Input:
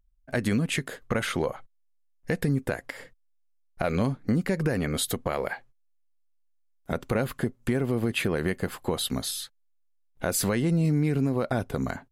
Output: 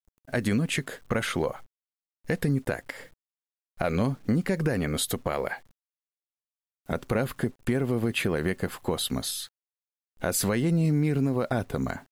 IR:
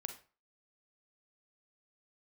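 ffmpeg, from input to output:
-af "acrusher=bits=9:mix=0:aa=0.000001"

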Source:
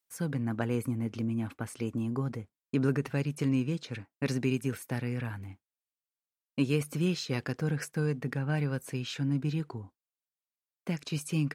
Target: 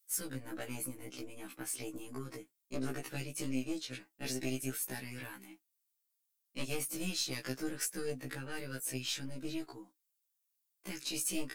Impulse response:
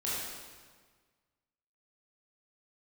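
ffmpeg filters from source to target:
-filter_complex "[0:a]highpass=200,equalizer=f=310:w=7.8:g=11.5,asplit=2[a][b];[b]acompressor=threshold=-38dB:ratio=20,volume=-1.5dB[c];[a][c]amix=inputs=2:normalize=0,aeval=exprs='clip(val(0),-1,0.0944)':c=same,aeval=exprs='0.224*(cos(1*acos(clip(val(0)/0.224,-1,1)))-cos(1*PI/2))+0.00708*(cos(2*acos(clip(val(0)/0.224,-1,1)))-cos(2*PI/2))+0.0355*(cos(4*acos(clip(val(0)/0.224,-1,1)))-cos(4*PI/2))+0.00141*(cos(5*acos(clip(val(0)/0.224,-1,1)))-cos(5*PI/2))+0.00158*(cos(8*acos(clip(val(0)/0.224,-1,1)))-cos(8*PI/2))':c=same,flanger=delay=4.3:depth=3.5:regen=56:speed=1.4:shape=triangular,crystalizer=i=6:c=0,afftfilt=real='re*1.73*eq(mod(b,3),0)':imag='im*1.73*eq(mod(b,3),0)':win_size=2048:overlap=0.75,volume=-6.5dB"

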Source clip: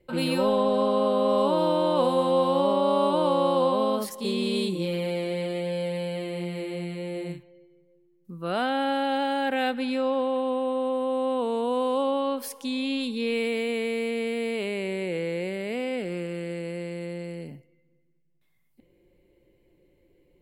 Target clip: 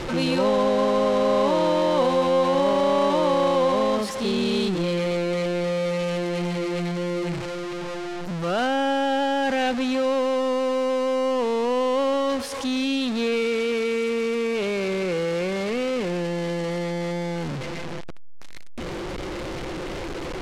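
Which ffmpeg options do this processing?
-af "aeval=exprs='val(0)+0.5*0.0562*sgn(val(0))':c=same,lowpass=6.2k"

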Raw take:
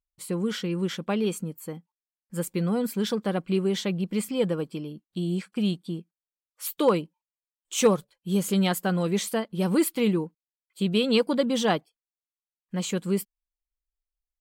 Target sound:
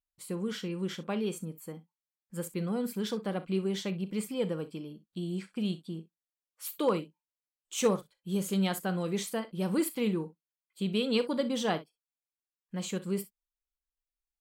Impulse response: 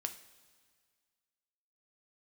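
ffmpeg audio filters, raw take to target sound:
-af "aecho=1:1:37|62:0.188|0.15,volume=-6.5dB"

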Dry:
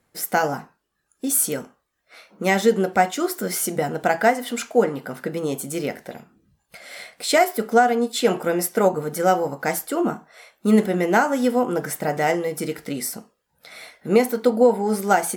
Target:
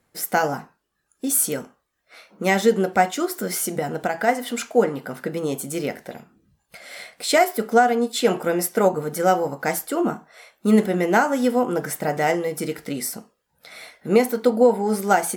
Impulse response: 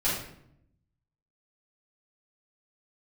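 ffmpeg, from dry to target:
-filter_complex "[0:a]asplit=3[a][b][c];[a]afade=t=out:st=3.24:d=0.02[d];[b]acompressor=threshold=-20dB:ratio=5,afade=t=in:st=3.24:d=0.02,afade=t=out:st=4.27:d=0.02[e];[c]afade=t=in:st=4.27:d=0.02[f];[d][e][f]amix=inputs=3:normalize=0"

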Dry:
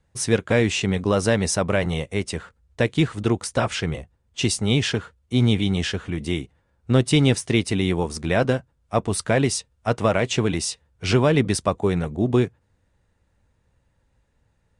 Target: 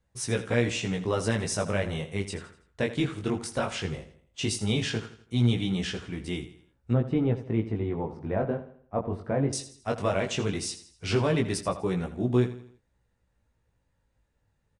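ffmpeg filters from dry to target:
-filter_complex "[0:a]asettb=1/sr,asplit=3[a][b][c];[a]atrim=end=6.934[d];[b]atrim=start=6.93:end=9.53,asetpts=PTS-STARTPTS,afade=t=in:d=0.004:c=qsin,afade=t=out:st=2.596:d=0.004:c=qsin,lowpass=1.1k[e];[c]atrim=start=9.526[f];[d][e]acrossfade=d=0.004:c1=hsin:c2=qsin[g];[g][f]acrossfade=d=0.004:c1=qsin:c2=hsin,flanger=delay=16:depth=5.6:speed=0.16,aecho=1:1:82|164|246|328:0.211|0.0888|0.0373|0.0157,volume=-4dB"

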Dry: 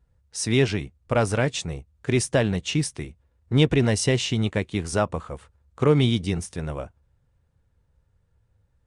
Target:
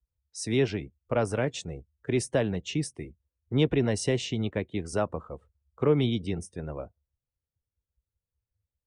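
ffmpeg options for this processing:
-filter_complex "[0:a]afftdn=nr=20:nf=-43,acrossover=split=260|640|1800[a][b][c][d];[b]acontrast=38[e];[a][e][c][d]amix=inputs=4:normalize=0,volume=-7.5dB"

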